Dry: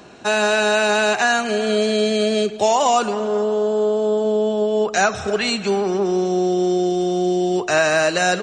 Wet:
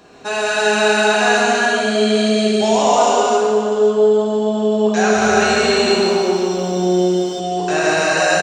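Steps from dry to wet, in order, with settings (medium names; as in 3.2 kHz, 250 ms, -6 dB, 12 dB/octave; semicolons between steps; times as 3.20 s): multi-tap echo 136/529 ms -7.5/-15 dB; gated-style reverb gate 460 ms flat, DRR -7 dB; 5.07–7.40 s: bit-crushed delay 149 ms, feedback 55%, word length 8-bit, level -4 dB; trim -5 dB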